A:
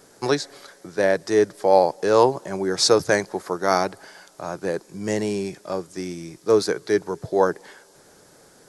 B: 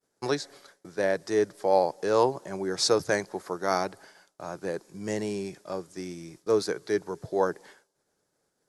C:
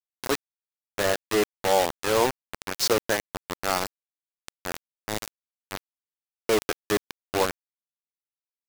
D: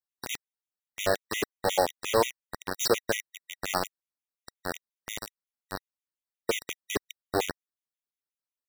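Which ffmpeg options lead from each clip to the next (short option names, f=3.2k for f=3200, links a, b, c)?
-af "agate=range=-33dB:threshold=-40dB:ratio=3:detection=peak,volume=-6.5dB"
-af "acrusher=bits=3:mix=0:aa=0.000001"
-af "afftfilt=real='re*gt(sin(2*PI*5.6*pts/sr)*(1-2*mod(floor(b*sr/1024/1900),2)),0)':imag='im*gt(sin(2*PI*5.6*pts/sr)*(1-2*mod(floor(b*sr/1024/1900),2)),0)':win_size=1024:overlap=0.75"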